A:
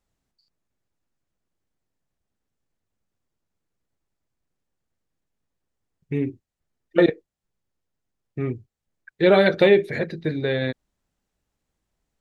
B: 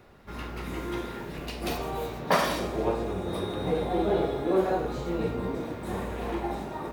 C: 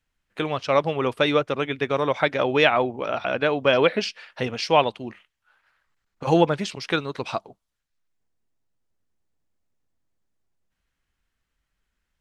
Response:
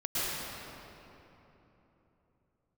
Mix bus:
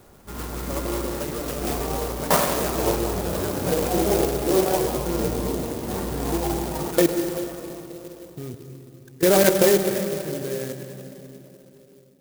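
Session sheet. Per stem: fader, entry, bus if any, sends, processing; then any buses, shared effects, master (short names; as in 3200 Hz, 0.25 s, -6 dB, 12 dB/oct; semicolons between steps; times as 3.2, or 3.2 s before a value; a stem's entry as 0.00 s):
+1.5 dB, 0.00 s, send -14.5 dB, level quantiser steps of 18 dB
+3.0 dB, 0.00 s, send -17.5 dB, dry
-16.5 dB, 0.00 s, send -6 dB, dry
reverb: on, RT60 3.4 s, pre-delay 0.101 s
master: clock jitter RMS 0.099 ms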